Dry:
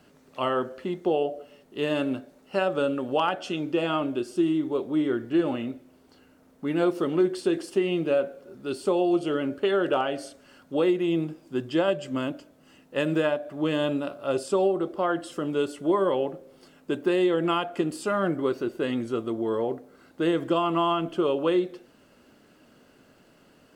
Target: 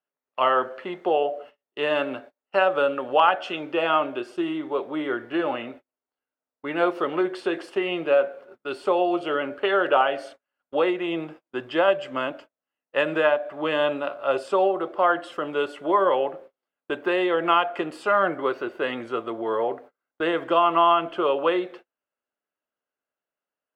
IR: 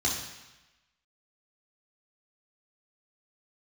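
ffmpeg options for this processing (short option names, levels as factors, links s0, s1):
-filter_complex "[0:a]acrossover=split=520 3100:gain=0.126 1 0.112[s0][s1][s2];[s0][s1][s2]amix=inputs=3:normalize=0,agate=range=0.0141:threshold=0.00282:ratio=16:detection=peak,volume=2.66"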